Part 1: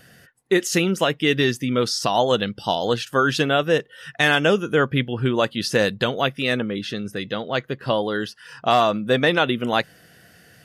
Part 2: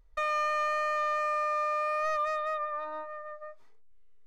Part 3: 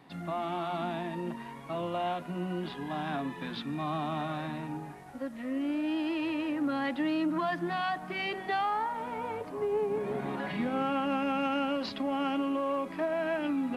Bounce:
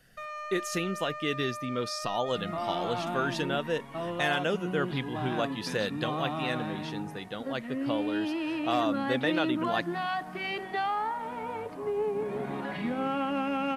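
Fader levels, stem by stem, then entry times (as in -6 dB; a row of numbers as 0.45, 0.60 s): -11.5, -10.0, 0.0 dB; 0.00, 0.00, 2.25 s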